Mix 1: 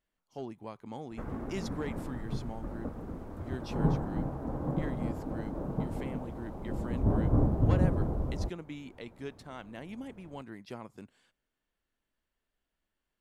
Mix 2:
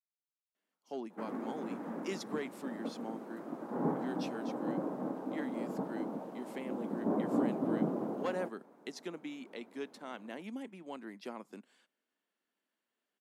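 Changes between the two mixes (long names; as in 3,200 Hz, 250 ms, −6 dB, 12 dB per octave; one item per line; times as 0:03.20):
speech: entry +0.55 s
master: add Butterworth high-pass 200 Hz 36 dB per octave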